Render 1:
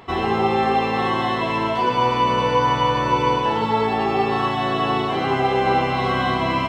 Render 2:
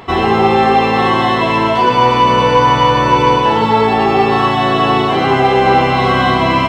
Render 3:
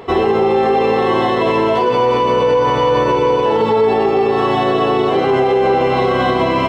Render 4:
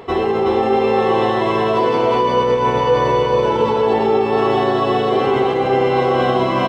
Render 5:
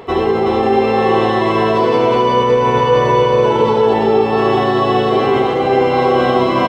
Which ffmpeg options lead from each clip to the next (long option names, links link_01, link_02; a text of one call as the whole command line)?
ffmpeg -i in.wav -af "acontrast=82,volume=2dB" out.wav
ffmpeg -i in.wav -af "equalizer=frequency=450:width=1.7:gain=12,alimiter=limit=-2.5dB:level=0:latency=1:release=48,volume=-4dB" out.wav
ffmpeg -i in.wav -af "aecho=1:1:371:0.708,areverse,acompressor=mode=upward:threshold=-14dB:ratio=2.5,areverse,volume=-3.5dB" out.wav
ffmpeg -i in.wav -af "aecho=1:1:73:0.422,volume=2dB" out.wav